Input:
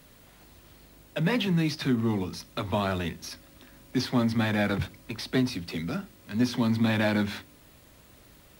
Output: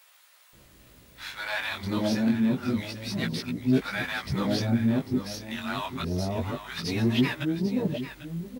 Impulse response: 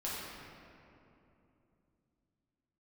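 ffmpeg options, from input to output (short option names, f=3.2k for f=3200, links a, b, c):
-filter_complex "[0:a]areverse,asplit=2[a][b];[b]aecho=0:1:796:0.266[c];[a][c]amix=inputs=2:normalize=0,flanger=delay=15:depth=7.8:speed=0.28,acrossover=split=770[d][e];[d]adelay=530[f];[f][e]amix=inputs=2:normalize=0,volume=3.5dB"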